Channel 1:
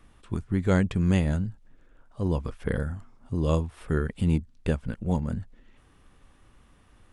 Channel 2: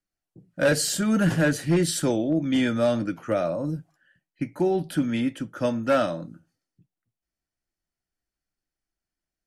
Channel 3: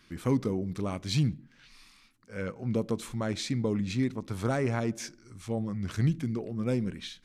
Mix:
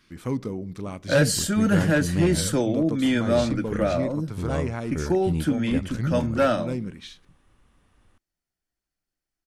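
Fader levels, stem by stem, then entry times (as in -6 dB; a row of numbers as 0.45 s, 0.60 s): -4.0 dB, +0.5 dB, -1.0 dB; 1.05 s, 0.50 s, 0.00 s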